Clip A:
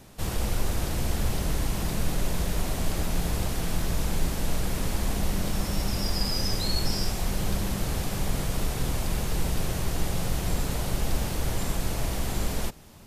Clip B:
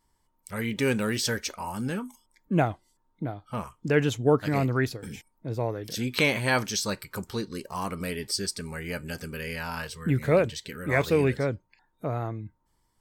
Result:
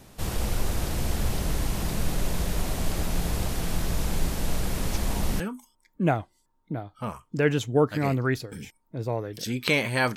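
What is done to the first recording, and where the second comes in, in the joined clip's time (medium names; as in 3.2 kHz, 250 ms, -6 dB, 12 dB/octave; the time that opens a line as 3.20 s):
clip A
4.92 s: add clip B from 1.43 s 0.48 s -8.5 dB
5.40 s: go over to clip B from 1.91 s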